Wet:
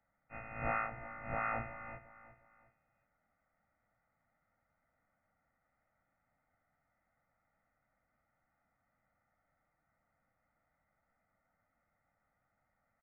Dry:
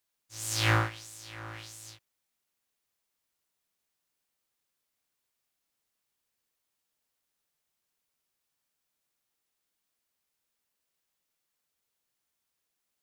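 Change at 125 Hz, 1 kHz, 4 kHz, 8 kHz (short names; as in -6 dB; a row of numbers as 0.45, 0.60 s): -15.5 dB, -2.5 dB, under -40 dB, under -35 dB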